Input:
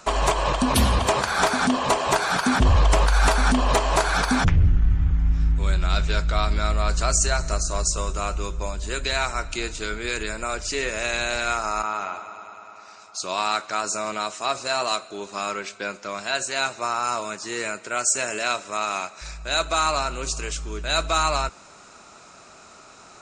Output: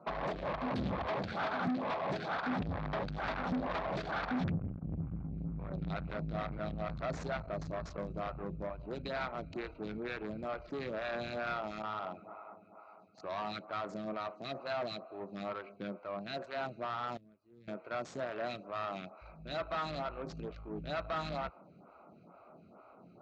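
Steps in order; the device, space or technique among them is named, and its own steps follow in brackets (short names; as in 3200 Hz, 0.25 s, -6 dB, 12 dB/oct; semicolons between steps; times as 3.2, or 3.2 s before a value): Wiener smoothing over 25 samples; vibe pedal into a guitar amplifier (photocell phaser 2.2 Hz; tube stage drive 31 dB, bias 0.3; speaker cabinet 100–3700 Hz, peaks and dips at 170 Hz +6 dB, 410 Hz -5 dB, 950 Hz -4 dB, 2900 Hz -6 dB); 17.17–17.68 passive tone stack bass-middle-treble 10-0-1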